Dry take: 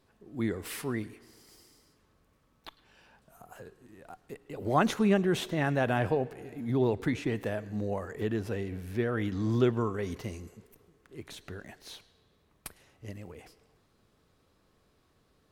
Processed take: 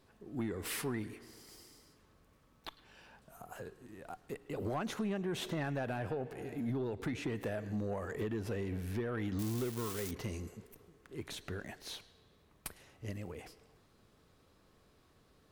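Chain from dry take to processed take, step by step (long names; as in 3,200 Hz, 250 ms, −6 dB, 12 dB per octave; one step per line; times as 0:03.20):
0:09.39–0:10.11: spike at every zero crossing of −19.5 dBFS
downward compressor 16 to 1, threshold −32 dBFS, peak gain reduction 14 dB
soft clipping −30 dBFS, distortion −16 dB
level +1.5 dB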